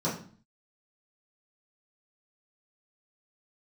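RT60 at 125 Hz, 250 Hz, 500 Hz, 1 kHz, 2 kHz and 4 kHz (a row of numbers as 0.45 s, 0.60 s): 0.60 s, 0.60 s, 0.45 s, 0.45 s, 0.40 s, 0.40 s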